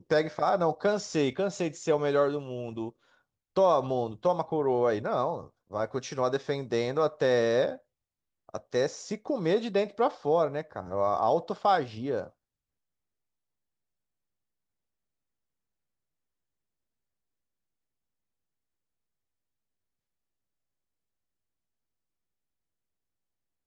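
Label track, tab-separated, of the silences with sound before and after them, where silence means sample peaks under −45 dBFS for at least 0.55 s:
2.900000	3.560000	silence
7.770000	8.490000	silence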